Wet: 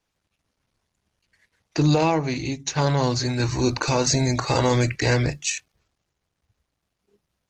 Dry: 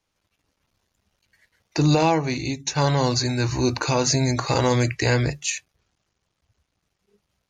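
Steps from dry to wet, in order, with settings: Opus 16 kbps 48 kHz

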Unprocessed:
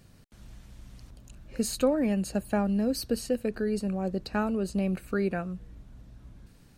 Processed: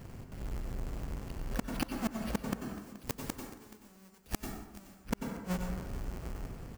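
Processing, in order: square wave that keeps the level; careless resampling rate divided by 6×, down filtered, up hold; 2.59–5.00 s: treble shelf 3.2 kHz +10.5 dB; inverted gate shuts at -18 dBFS, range -39 dB; treble shelf 10 kHz +4.5 dB; plate-style reverb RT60 0.94 s, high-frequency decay 0.55×, pre-delay 80 ms, DRR 4.5 dB; compression 2.5:1, threshold -36 dBFS, peak gain reduction 8.5 dB; delay 427 ms -17.5 dB; trim +3.5 dB

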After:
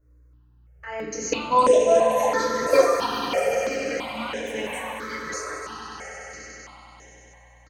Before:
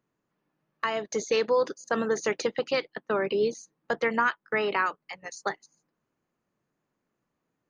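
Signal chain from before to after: comb 3.7 ms, depth 34%; level held to a coarse grid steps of 22 dB; mains buzz 60 Hz, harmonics 10, -70 dBFS -8 dB/octave; echo with a slow build-up 97 ms, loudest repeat 5, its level -10 dB; FDN reverb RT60 0.81 s, low-frequency decay 1.05×, high-frequency decay 0.7×, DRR -8 dB; ever faster or slower copies 742 ms, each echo +5 st, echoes 3, each echo -6 dB; stepped phaser 3 Hz 820–4500 Hz; trim +5.5 dB

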